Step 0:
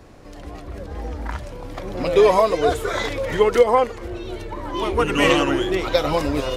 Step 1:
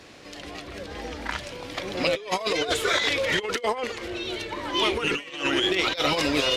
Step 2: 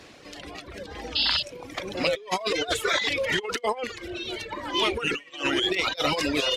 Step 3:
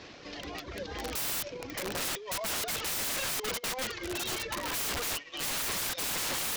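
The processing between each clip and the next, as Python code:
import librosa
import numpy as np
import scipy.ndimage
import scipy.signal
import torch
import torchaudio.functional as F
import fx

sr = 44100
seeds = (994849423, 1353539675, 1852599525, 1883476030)

y1 = fx.weighting(x, sr, curve='D')
y1 = fx.over_compress(y1, sr, threshold_db=-20.0, ratio=-0.5)
y1 = F.gain(torch.from_numpy(y1), -4.5).numpy()
y2 = fx.spec_paint(y1, sr, seeds[0], shape='noise', start_s=1.15, length_s=0.28, low_hz=2600.0, high_hz=5200.0, level_db=-23.0)
y2 = fx.dereverb_blind(y2, sr, rt60_s=1.2)
y3 = fx.cvsd(y2, sr, bps=32000)
y3 = (np.mod(10.0 ** (28.0 / 20.0) * y3 + 1.0, 2.0) - 1.0) / 10.0 ** (28.0 / 20.0)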